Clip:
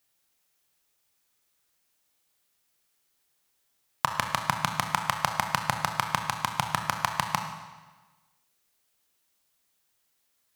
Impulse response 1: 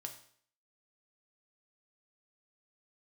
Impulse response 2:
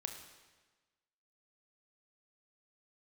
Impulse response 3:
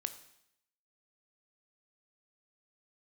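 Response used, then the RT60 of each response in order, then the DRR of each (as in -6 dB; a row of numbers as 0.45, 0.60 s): 2; 0.55, 1.3, 0.75 s; 3.5, 4.5, 10.0 dB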